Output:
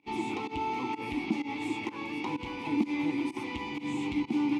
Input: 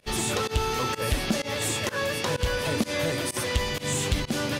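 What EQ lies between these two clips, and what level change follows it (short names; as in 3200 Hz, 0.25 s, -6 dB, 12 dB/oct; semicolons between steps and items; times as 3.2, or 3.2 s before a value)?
vowel filter u; +8.0 dB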